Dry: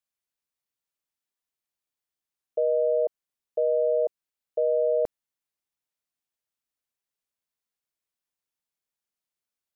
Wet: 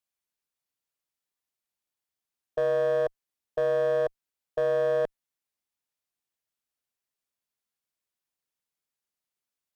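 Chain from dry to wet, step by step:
asymmetric clip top −23 dBFS, bottom −19 dBFS

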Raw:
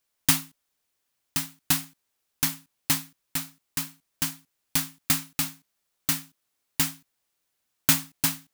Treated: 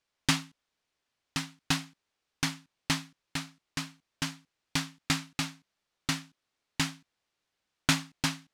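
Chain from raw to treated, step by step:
low-pass filter 5,000 Hz 12 dB per octave

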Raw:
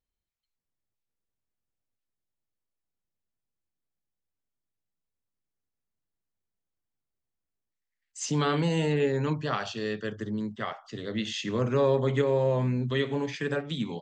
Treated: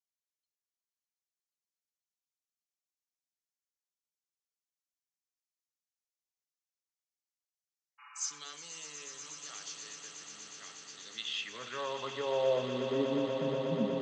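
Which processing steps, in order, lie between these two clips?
band-pass filter sweep 6,100 Hz → 200 Hz, 0:10.82–0:13.33
healed spectral selection 0:08.02–0:08.36, 800–2,900 Hz after
echo that builds up and dies away 121 ms, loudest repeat 8, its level −12 dB

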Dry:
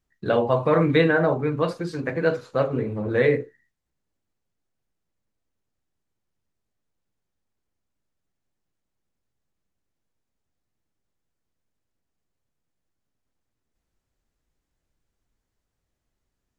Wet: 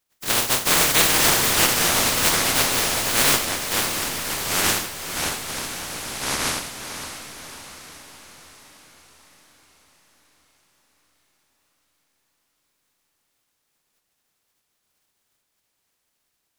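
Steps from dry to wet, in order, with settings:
compressing power law on the bin magnitudes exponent 0.1
delay with pitch and tempo change per echo 307 ms, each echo −5 semitones, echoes 2
feedback delay with all-pass diffusion 562 ms, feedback 57%, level −9 dB

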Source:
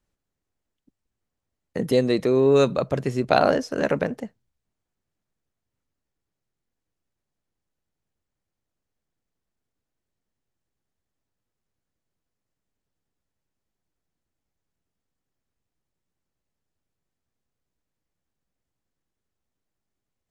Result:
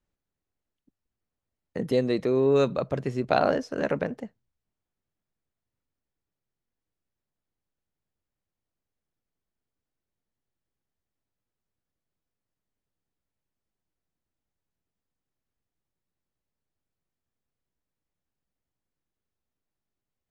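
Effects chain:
high-shelf EQ 7,100 Hz −10.5 dB
level −4 dB

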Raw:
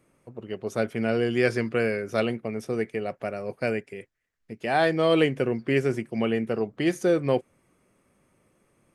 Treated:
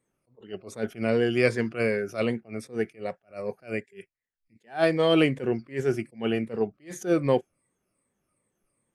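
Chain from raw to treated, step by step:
rippled gain that drifts along the octave scale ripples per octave 1, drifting −2.6 Hz, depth 7 dB
noise reduction from a noise print of the clip's start 13 dB
level that may rise only so fast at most 230 dB per second

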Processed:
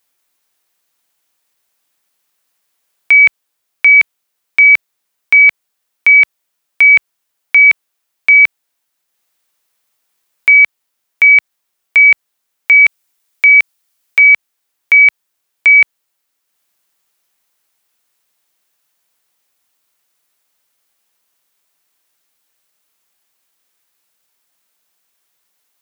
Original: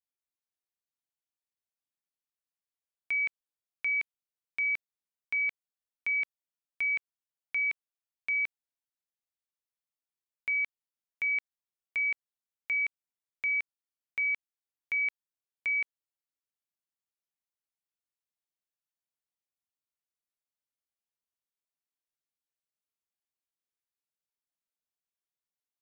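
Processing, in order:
spectral tilt +3 dB per octave
transient designer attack +4 dB, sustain −4 dB
high-shelf EQ 2,600 Hz −11.5 dB, from 0:12.86 −5.5 dB, from 0:14.19 −11 dB
boost into a limiter +29 dB
level −1 dB

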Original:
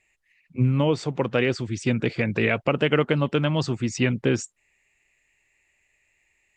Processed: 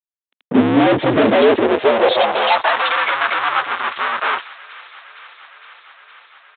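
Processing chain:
partials spread apart or drawn together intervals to 124%
gate on every frequency bin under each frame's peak −15 dB strong
low-shelf EQ 460 Hz −7 dB
brickwall limiter −26.5 dBFS, peak gain reduction 10 dB
0:01.42–0:02.20: leveller curve on the samples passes 5
fuzz pedal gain 66 dB, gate −59 dBFS
high-pass filter sweep 250 Hz → 1,200 Hz, 0:01.14–0:02.89
on a send: delay with a high-pass on its return 462 ms, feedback 77%, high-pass 1,500 Hz, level −18 dB
on the sum: downsampling to 8,000 Hz

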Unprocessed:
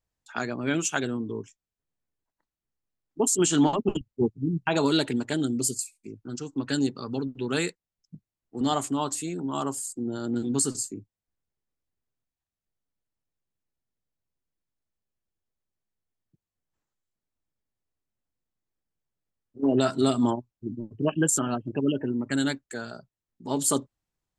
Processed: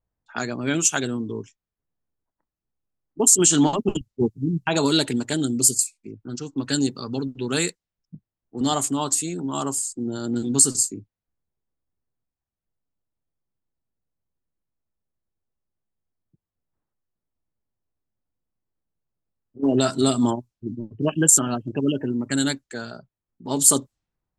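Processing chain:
low-pass that shuts in the quiet parts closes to 1,300 Hz, open at −25.5 dBFS
bass and treble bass +2 dB, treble +9 dB
level +2 dB

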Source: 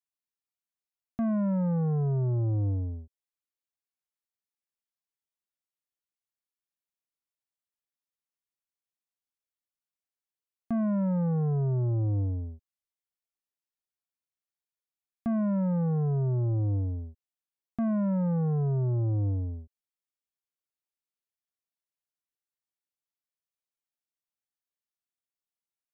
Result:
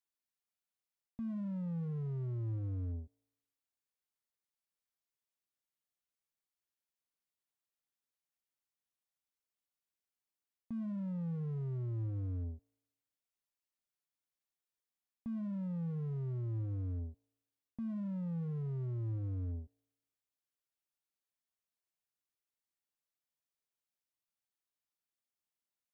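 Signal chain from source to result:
reversed playback
downward compressor 20 to 1, threshold −35 dBFS, peak gain reduction 9 dB
reversed playback
tuned comb filter 56 Hz, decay 0.95 s, harmonics all, mix 30%
slew-rate limiting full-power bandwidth 3.2 Hz
level +1 dB

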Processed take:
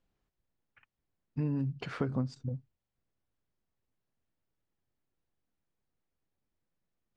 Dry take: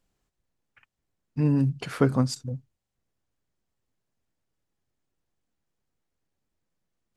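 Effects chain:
0:02.08–0:02.49: tilt shelving filter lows +4 dB, about 780 Hz
downward compressor 4 to 1, threshold −26 dBFS, peak gain reduction 10 dB
high-frequency loss of the air 130 metres
level −3.5 dB

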